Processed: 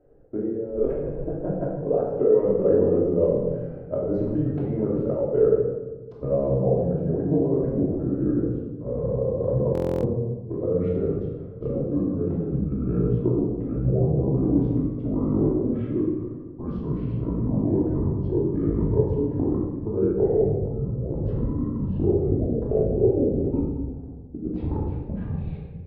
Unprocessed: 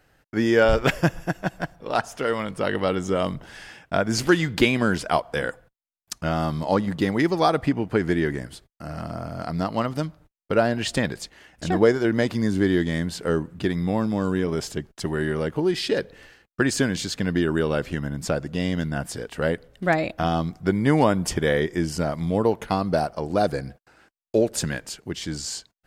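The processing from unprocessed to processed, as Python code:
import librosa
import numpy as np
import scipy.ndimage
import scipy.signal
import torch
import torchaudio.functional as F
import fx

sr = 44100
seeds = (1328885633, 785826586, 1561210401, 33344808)

y = fx.pitch_glide(x, sr, semitones=-11.5, runs='starting unshifted')
y = fx.over_compress(y, sr, threshold_db=-26.0, ratio=-0.5)
y = fx.lowpass_res(y, sr, hz=480.0, q=4.9)
y = fx.room_shoebox(y, sr, seeds[0], volume_m3=850.0, walls='mixed', distance_m=2.9)
y = fx.buffer_glitch(y, sr, at_s=(9.73,), block=1024, repeats=12)
y = y * librosa.db_to_amplitude(-6.5)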